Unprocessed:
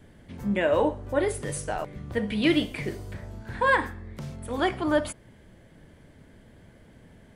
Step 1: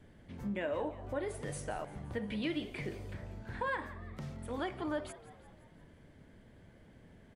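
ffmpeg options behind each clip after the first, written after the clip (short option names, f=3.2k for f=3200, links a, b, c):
-filter_complex "[0:a]highshelf=f=7.9k:g=-7.5,acompressor=threshold=-30dB:ratio=2.5,asplit=6[a][b][c][d][e][f];[b]adelay=173,afreqshift=78,volume=-17dB[g];[c]adelay=346,afreqshift=156,volume=-22.4dB[h];[d]adelay=519,afreqshift=234,volume=-27.7dB[i];[e]adelay=692,afreqshift=312,volume=-33.1dB[j];[f]adelay=865,afreqshift=390,volume=-38.4dB[k];[a][g][h][i][j][k]amix=inputs=6:normalize=0,volume=-6dB"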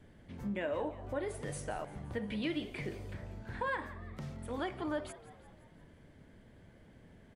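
-af anull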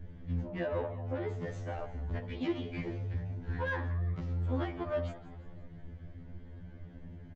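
-af "aemphasis=mode=reproduction:type=bsi,aresample=16000,asoftclip=type=tanh:threshold=-29.5dB,aresample=44100,afftfilt=real='re*2*eq(mod(b,4),0)':imag='im*2*eq(mod(b,4),0)':win_size=2048:overlap=0.75,volume=4dB"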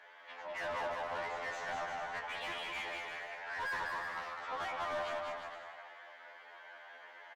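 -filter_complex "[0:a]highpass=f=770:w=0.5412,highpass=f=770:w=1.3066,asplit=2[a][b];[b]highpass=f=720:p=1,volume=26dB,asoftclip=type=tanh:threshold=-28dB[c];[a][c]amix=inputs=2:normalize=0,lowpass=f=2.1k:p=1,volume=-6dB,asplit=2[d][e];[e]aecho=0:1:200|350|462.5|546.9|610.2:0.631|0.398|0.251|0.158|0.1[f];[d][f]amix=inputs=2:normalize=0,volume=-3.5dB"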